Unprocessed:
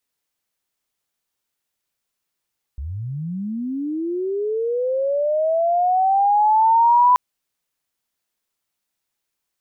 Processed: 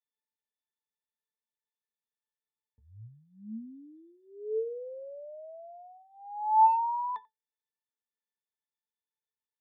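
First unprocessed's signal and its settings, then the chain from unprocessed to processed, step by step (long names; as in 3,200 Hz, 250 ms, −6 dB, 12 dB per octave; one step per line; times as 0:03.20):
glide linear 62 Hz → 1,000 Hz −26 dBFS → −10 dBFS 4.38 s
high-pass filter 720 Hz 6 dB per octave
resonances in every octave A, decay 0.13 s
far-end echo of a speakerphone 90 ms, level −24 dB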